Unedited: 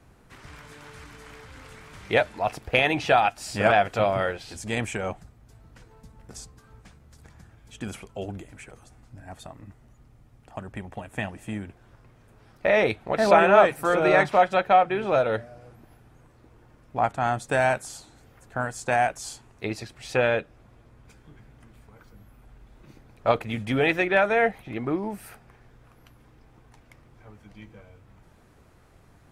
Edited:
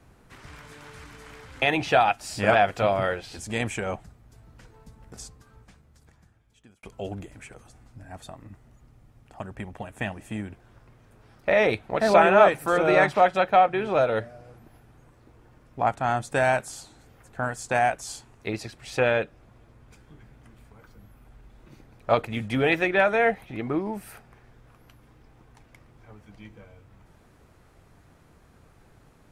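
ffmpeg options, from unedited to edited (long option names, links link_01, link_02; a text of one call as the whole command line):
ffmpeg -i in.wav -filter_complex "[0:a]asplit=3[link_01][link_02][link_03];[link_01]atrim=end=1.622[link_04];[link_02]atrim=start=2.788:end=8,asetpts=PTS-STARTPTS,afade=type=out:start_time=3.602:duration=1.61[link_05];[link_03]atrim=start=8,asetpts=PTS-STARTPTS,afade=type=in:duration=0.004:curve=hsin[link_06];[link_05][link_06]concat=n=2:v=0:a=1[link_07];[link_04][link_07]acrossfade=duration=0.004:curve1=hsin:curve2=hsin" out.wav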